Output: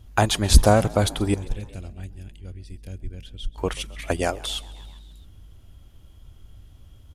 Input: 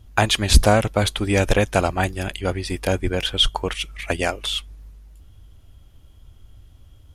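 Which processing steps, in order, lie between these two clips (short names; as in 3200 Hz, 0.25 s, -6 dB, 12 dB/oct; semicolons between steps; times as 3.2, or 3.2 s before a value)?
1.34–3.58 passive tone stack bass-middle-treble 10-0-1; frequency-shifting echo 0.133 s, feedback 65%, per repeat +62 Hz, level -22.5 dB; dynamic EQ 2400 Hz, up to -8 dB, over -39 dBFS, Q 1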